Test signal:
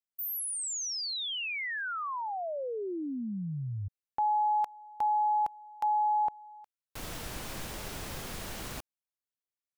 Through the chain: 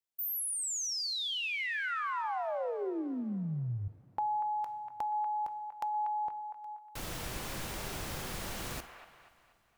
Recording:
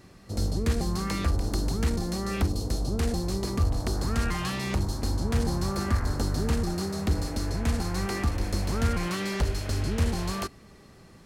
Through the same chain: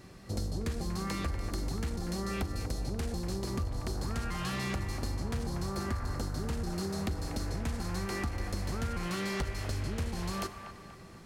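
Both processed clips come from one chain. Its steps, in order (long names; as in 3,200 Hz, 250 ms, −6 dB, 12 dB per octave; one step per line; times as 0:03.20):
coupled-rooms reverb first 0.57 s, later 3.9 s, from −18 dB, DRR 12.5 dB
downward compressor, threshold −31 dBFS
on a send: delay with a band-pass on its return 240 ms, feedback 43%, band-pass 1,300 Hz, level −7 dB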